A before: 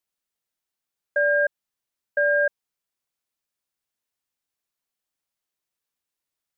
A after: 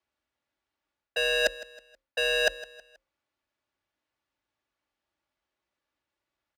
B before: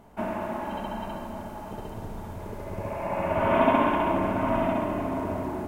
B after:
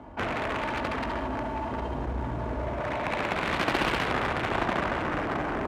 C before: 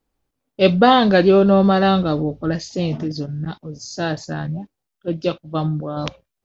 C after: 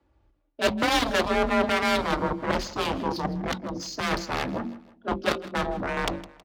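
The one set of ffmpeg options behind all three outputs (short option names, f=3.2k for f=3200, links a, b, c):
-filter_complex "[0:a]bandreject=f=50:t=h:w=6,bandreject=f=100:t=h:w=6,bandreject=f=150:t=h:w=6,bandreject=f=200:t=h:w=6,bandreject=f=250:t=h:w=6,bandreject=f=300:t=h:w=6,bandreject=f=350:t=h:w=6,bandreject=f=400:t=h:w=6,bandreject=f=450:t=h:w=6,bandreject=f=500:t=h:w=6,aecho=1:1:3.6:0.42,areverse,acompressor=threshold=-28dB:ratio=4,areverse,aeval=exprs='0.15*(cos(1*acos(clip(val(0)/0.15,-1,1)))-cos(1*PI/2))+0.00299*(cos(6*acos(clip(val(0)/0.15,-1,1)))-cos(6*PI/2))+0.0596*(cos(7*acos(clip(val(0)/0.15,-1,1)))-cos(7*PI/2))':c=same,afreqshift=35,adynamicsmooth=sensitivity=6:basefreq=3k,asplit=2[a][b];[b]aecho=0:1:160|320|480:0.126|0.0504|0.0201[c];[a][c]amix=inputs=2:normalize=0,volume=3dB"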